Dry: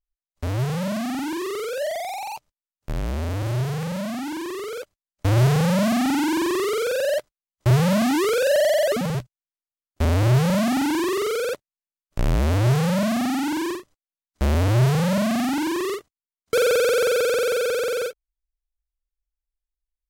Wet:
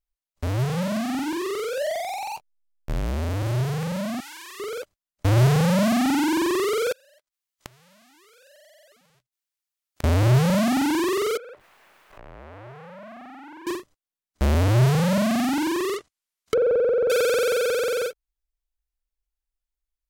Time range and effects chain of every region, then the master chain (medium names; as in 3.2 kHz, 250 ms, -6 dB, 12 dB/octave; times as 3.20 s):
0.63–2.97 s: hysteresis with a dead band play -48.5 dBFS + doubling 23 ms -13.5 dB
4.20–4.60 s: high-pass 1.5 kHz + transformer saturation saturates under 1.7 kHz
6.92–10.04 s: tilt shelf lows -8 dB, about 770 Hz + inverted gate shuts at -17 dBFS, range -35 dB
11.37–13.67 s: jump at every zero crossing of -34 dBFS + three-band isolator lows -13 dB, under 420 Hz, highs -22 dB, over 2.5 kHz + compression 3:1, threshold -45 dBFS
15.96–17.10 s: low-pass that closes with the level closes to 730 Hz, closed at -20.5 dBFS + tape noise reduction on one side only encoder only
whole clip: none